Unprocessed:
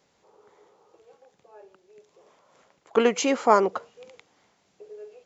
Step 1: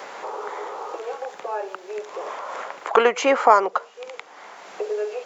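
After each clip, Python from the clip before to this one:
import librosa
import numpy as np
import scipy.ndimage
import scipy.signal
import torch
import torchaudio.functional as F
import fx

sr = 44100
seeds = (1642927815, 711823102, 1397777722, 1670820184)

y = scipy.signal.sosfilt(scipy.signal.butter(2, 460.0, 'highpass', fs=sr, output='sos'), x)
y = fx.peak_eq(y, sr, hz=1200.0, db=6.0, octaves=2.0)
y = fx.band_squash(y, sr, depth_pct=70)
y = F.gain(torch.from_numpy(y), 8.5).numpy()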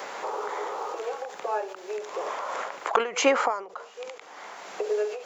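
y = fx.high_shelf(x, sr, hz=6400.0, db=5.0)
y = fx.end_taper(y, sr, db_per_s=110.0)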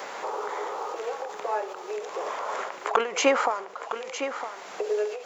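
y = x + 10.0 ** (-9.5 / 20.0) * np.pad(x, (int(959 * sr / 1000.0), 0))[:len(x)]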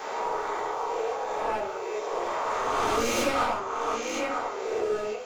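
y = fx.spec_swells(x, sr, rise_s=1.59)
y = np.clip(10.0 ** (23.0 / 20.0) * y, -1.0, 1.0) / 10.0 ** (23.0 / 20.0)
y = fx.room_shoebox(y, sr, seeds[0], volume_m3=260.0, walls='furnished', distance_m=3.7)
y = F.gain(torch.from_numpy(y), -8.5).numpy()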